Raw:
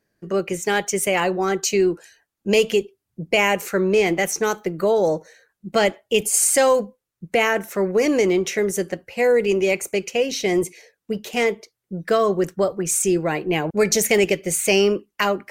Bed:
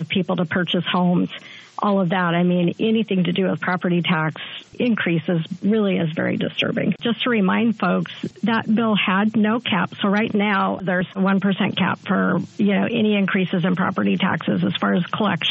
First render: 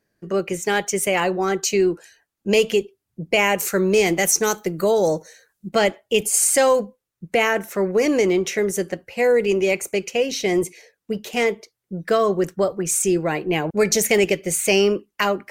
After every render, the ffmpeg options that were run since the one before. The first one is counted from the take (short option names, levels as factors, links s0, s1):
-filter_complex "[0:a]asettb=1/sr,asplit=3[s0][s1][s2];[s0]atrim=end=3.584[s3];[s1]atrim=start=3.58:end=5.69,asetpts=PTS-STARTPTS,afade=t=in:d=0.004:c=qsin,afade=t=out:st=2.106:d=0.004:c=qsin,bass=f=250:g=2,treble=f=4000:g=9[s4];[s2]atrim=start=5.686[s5];[s3][s4]acrossfade=d=0.004:c1=hsin:c2=qsin[s6];[s6][s5]acrossfade=d=0.004:c1=qsin:c2=hsin"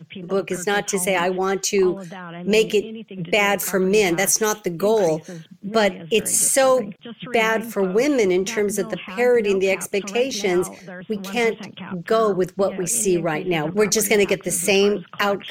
-filter_complex "[1:a]volume=0.168[s0];[0:a][s0]amix=inputs=2:normalize=0"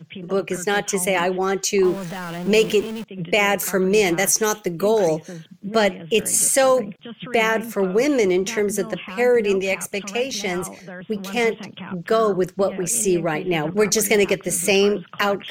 -filter_complex "[0:a]asettb=1/sr,asplit=3[s0][s1][s2];[s0]atrim=end=1.844[s3];[s1]atrim=start=1.84:end=3.04,asetpts=PTS-STARTPTS,afade=t=in:d=0.004:c=qsin,afade=t=out:st=1.196:d=0.004:c=qsin,aeval=exprs='val(0)+0.5*0.0299*sgn(val(0))':c=same[s4];[s2]atrim=start=3.036[s5];[s3][s4]acrossfade=d=0.004:c1=hsin:c2=qsin[s6];[s6][s5]acrossfade=d=0.004:c1=qsin:c2=hsin,asettb=1/sr,asplit=3[s7][s8][s9];[s7]atrim=end=9.614[s10];[s8]atrim=start=9.61:end=10.67,asetpts=PTS-STARTPTS,afade=t=in:d=0.004:c=qsin,afade=t=out:st=1.056:d=0.004:c=qsin,equalizer=f=350:t=o:w=0.77:g=-8.5[s11];[s9]atrim=start=10.666[s12];[s10][s11]acrossfade=d=0.004:c1=hsin:c2=qsin[s13];[s13][s12]acrossfade=d=0.004:c1=qsin:c2=hsin"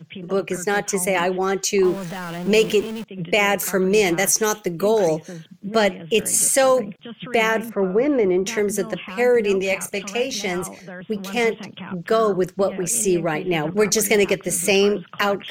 -filter_complex "[0:a]asettb=1/sr,asplit=3[s0][s1][s2];[s0]atrim=end=0.524[s3];[s1]atrim=start=0.52:end=1.15,asetpts=PTS-STARTPTS,afade=t=in:d=0.004:c=qsin,afade=t=out:st=0.626:d=0.004:c=qsin,equalizer=f=3100:t=o:w=0.34:g=-8.5[s4];[s2]atrim=start=1.146[s5];[s3][s4]acrossfade=d=0.004:c1=hsin:c2=qsin[s6];[s6][s5]acrossfade=d=0.004:c1=qsin:c2=hsin,asettb=1/sr,asplit=3[s7][s8][s9];[s7]atrim=end=7.694[s10];[s8]atrim=start=7.69:end=8.46,asetpts=PTS-STARTPTS,afade=t=in:d=0.004:c=qsin,afade=t=out:st=0.766:d=0.004:c=qsin,lowpass=1600[s11];[s9]atrim=start=8.456[s12];[s10][s11]acrossfade=d=0.004:c1=hsin:c2=qsin[s13];[s13][s12]acrossfade=d=0.004:c1=qsin:c2=hsin,asettb=1/sr,asplit=3[s14][s15][s16];[s14]atrim=end=9.574[s17];[s15]atrim=start=9.57:end=10.48,asetpts=PTS-STARTPTS,afade=t=in:d=0.004:c=qsin,afade=t=out:st=0.906:d=0.004:c=qsin,asplit=2[s18][s19];[s19]adelay=33,volume=0.251[s20];[s18][s20]amix=inputs=2:normalize=0,atrim=end_sample=40131[s21];[s16]atrim=start=10.476[s22];[s17][s21]acrossfade=d=0.004:c1=hsin:c2=qsin[s23];[s23][s22]acrossfade=d=0.004:c1=qsin:c2=hsin"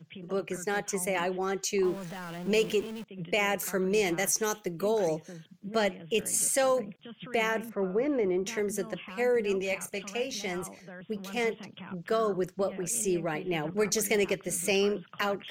-af "volume=0.335"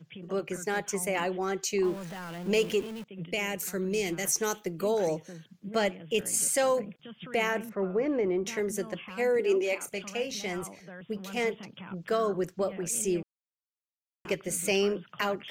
-filter_complex "[0:a]asettb=1/sr,asplit=3[s0][s1][s2];[s0]atrim=end=3.264[s3];[s1]atrim=start=3.26:end=4.25,asetpts=PTS-STARTPTS,afade=t=in:d=0.004:c=qsin,afade=t=out:st=0.986:d=0.004:c=qsin,equalizer=f=960:w=0.63:g=-8.5[s4];[s2]atrim=start=4.246[s5];[s3][s4]acrossfade=d=0.004:c1=hsin:c2=qsin[s6];[s6][s5]acrossfade=d=0.004:c1=qsin:c2=hsin,asettb=1/sr,asplit=3[s7][s8][s9];[s7]atrim=end=9.394[s10];[s8]atrim=start=9.39:end=9.87,asetpts=PTS-STARTPTS,afade=t=in:d=0.004:c=qsin,afade=t=out:st=0.476:d=0.004:c=qsin,lowshelf=f=210:t=q:w=3:g=-11.5[s11];[s9]atrim=start=9.866[s12];[s10][s11]acrossfade=d=0.004:c1=hsin:c2=qsin[s13];[s13][s12]acrossfade=d=0.004:c1=qsin:c2=hsin,asplit=3[s14][s15][s16];[s14]atrim=end=13.23,asetpts=PTS-STARTPTS,afade=t=out:st=13.226:d=0.004:c=hsin[s17];[s15]atrim=start=13.23:end=14.25,asetpts=PTS-STARTPTS,volume=0[s18];[s16]atrim=start=14.25,asetpts=PTS-STARTPTS,afade=t=in:d=0.004:c=hsin[s19];[s17][s18][s19]concat=n=3:v=0:a=1"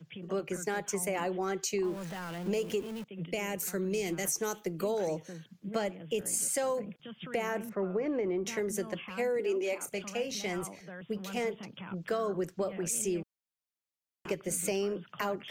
-filter_complex "[0:a]acrossover=split=180|1500|5100[s0][s1][s2][s3];[s2]alimiter=level_in=2.37:limit=0.0631:level=0:latency=1:release=401,volume=0.422[s4];[s0][s1][s4][s3]amix=inputs=4:normalize=0,acompressor=threshold=0.0398:ratio=6"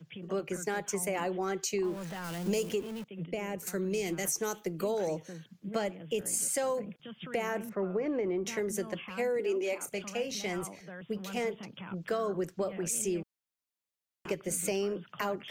-filter_complex "[0:a]asettb=1/sr,asplit=3[s0][s1][s2];[s0]atrim=end=2.244[s3];[s1]atrim=start=2.24:end=2.69,asetpts=PTS-STARTPTS,afade=t=in:d=0.004:c=qsin,afade=t=out:st=0.446:d=0.004:c=qsin,bass=f=250:g=3,treble=f=4000:g=9[s4];[s2]atrim=start=2.686[s5];[s3][s4]acrossfade=d=0.004:c1=hsin:c2=qsin[s6];[s6][s5]acrossfade=d=0.004:c1=qsin:c2=hsin,asettb=1/sr,asplit=3[s7][s8][s9];[s7]atrim=end=3.244[s10];[s8]atrim=start=3.24:end=3.67,asetpts=PTS-STARTPTS,afade=t=in:d=0.004:c=qsin,afade=t=out:st=0.426:d=0.004:c=qsin,highshelf=f=2500:g=-11[s11];[s9]atrim=start=3.666[s12];[s10][s11]acrossfade=d=0.004:c1=hsin:c2=qsin[s13];[s13][s12]acrossfade=d=0.004:c1=qsin:c2=hsin"